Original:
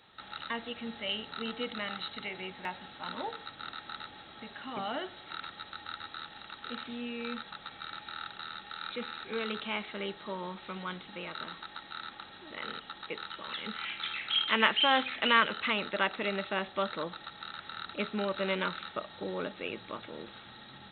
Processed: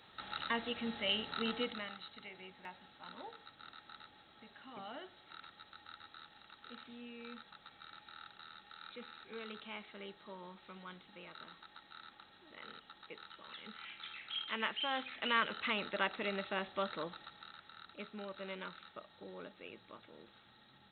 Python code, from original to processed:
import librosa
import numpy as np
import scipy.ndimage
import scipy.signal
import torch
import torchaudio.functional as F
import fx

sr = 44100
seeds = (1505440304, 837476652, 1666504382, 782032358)

y = fx.gain(x, sr, db=fx.line((1.57, 0.0), (1.99, -12.0), (14.91, -12.0), (15.67, -5.5), (17.05, -5.5), (17.7, -13.5)))